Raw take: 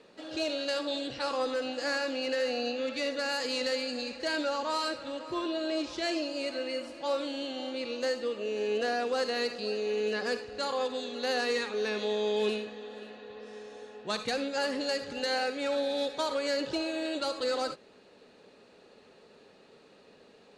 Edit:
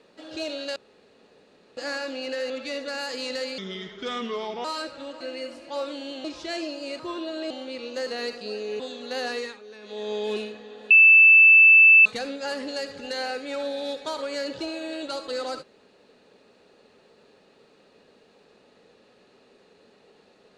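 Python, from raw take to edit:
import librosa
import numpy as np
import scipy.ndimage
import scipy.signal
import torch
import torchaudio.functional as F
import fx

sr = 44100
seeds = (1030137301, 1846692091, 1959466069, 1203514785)

y = fx.edit(x, sr, fx.room_tone_fill(start_s=0.76, length_s=1.01),
    fx.cut(start_s=2.5, length_s=0.31),
    fx.speed_span(start_s=3.89, length_s=0.82, speed=0.77),
    fx.swap(start_s=5.27, length_s=0.51, other_s=6.53, other_length_s=1.04),
    fx.cut(start_s=8.13, length_s=1.11),
    fx.cut(start_s=9.97, length_s=0.95),
    fx.fade_down_up(start_s=11.45, length_s=0.79, db=-13.5, fade_s=0.3),
    fx.bleep(start_s=13.03, length_s=1.15, hz=2640.0, db=-9.5), tone=tone)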